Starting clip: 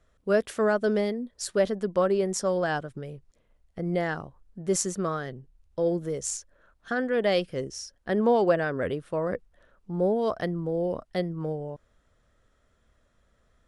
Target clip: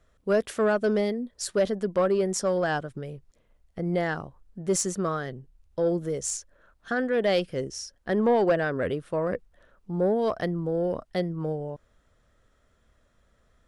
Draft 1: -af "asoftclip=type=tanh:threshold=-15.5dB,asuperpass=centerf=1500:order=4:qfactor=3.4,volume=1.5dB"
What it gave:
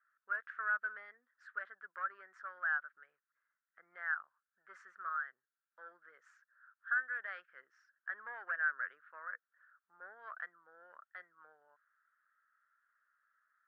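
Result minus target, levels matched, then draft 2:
2,000 Hz band +11.0 dB
-af "asoftclip=type=tanh:threshold=-15.5dB,volume=1.5dB"

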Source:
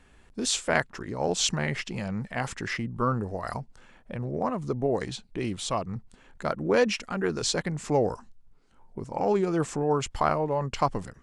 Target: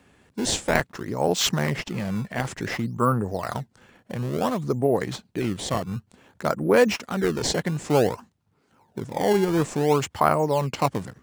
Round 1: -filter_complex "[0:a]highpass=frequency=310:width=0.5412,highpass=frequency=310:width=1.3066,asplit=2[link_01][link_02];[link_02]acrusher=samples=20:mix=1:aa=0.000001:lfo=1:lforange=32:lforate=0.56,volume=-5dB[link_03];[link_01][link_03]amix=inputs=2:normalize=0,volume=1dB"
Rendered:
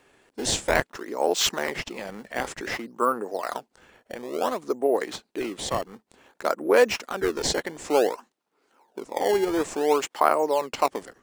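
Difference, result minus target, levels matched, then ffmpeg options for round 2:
125 Hz band −15.0 dB
-filter_complex "[0:a]highpass=frequency=87:width=0.5412,highpass=frequency=87:width=1.3066,asplit=2[link_01][link_02];[link_02]acrusher=samples=20:mix=1:aa=0.000001:lfo=1:lforange=32:lforate=0.56,volume=-5dB[link_03];[link_01][link_03]amix=inputs=2:normalize=0,volume=1dB"

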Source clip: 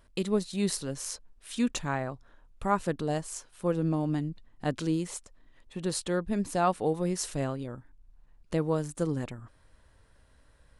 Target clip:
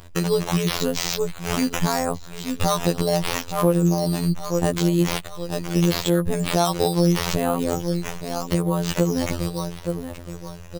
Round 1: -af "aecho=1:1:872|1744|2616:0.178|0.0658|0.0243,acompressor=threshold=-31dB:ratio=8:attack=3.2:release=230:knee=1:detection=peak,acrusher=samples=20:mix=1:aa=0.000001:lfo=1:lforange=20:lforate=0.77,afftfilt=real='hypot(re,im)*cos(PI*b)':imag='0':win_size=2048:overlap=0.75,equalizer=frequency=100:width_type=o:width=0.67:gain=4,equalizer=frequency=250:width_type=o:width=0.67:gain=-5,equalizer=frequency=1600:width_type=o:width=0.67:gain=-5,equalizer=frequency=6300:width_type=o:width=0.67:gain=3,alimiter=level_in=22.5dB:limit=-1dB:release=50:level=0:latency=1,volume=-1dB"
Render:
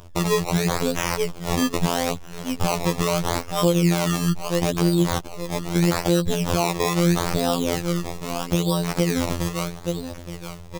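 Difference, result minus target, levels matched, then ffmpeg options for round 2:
sample-and-hold swept by an LFO: distortion +5 dB
-af "aecho=1:1:872|1744|2616:0.178|0.0658|0.0243,acompressor=threshold=-31dB:ratio=8:attack=3.2:release=230:knee=1:detection=peak,acrusher=samples=7:mix=1:aa=0.000001:lfo=1:lforange=7:lforate=0.77,afftfilt=real='hypot(re,im)*cos(PI*b)':imag='0':win_size=2048:overlap=0.75,equalizer=frequency=100:width_type=o:width=0.67:gain=4,equalizer=frequency=250:width_type=o:width=0.67:gain=-5,equalizer=frequency=1600:width_type=o:width=0.67:gain=-5,equalizer=frequency=6300:width_type=o:width=0.67:gain=3,alimiter=level_in=22.5dB:limit=-1dB:release=50:level=0:latency=1,volume=-1dB"

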